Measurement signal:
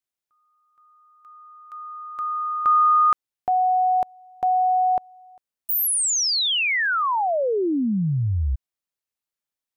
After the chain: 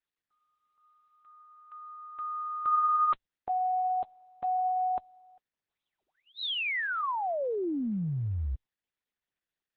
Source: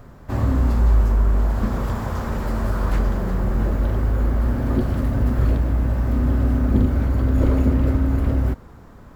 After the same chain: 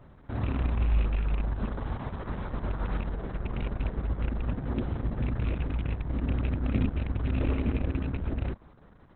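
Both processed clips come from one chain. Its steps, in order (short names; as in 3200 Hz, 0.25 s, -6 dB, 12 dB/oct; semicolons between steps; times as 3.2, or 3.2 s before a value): rattling part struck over -14 dBFS, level -18 dBFS; gain -9 dB; Opus 6 kbps 48000 Hz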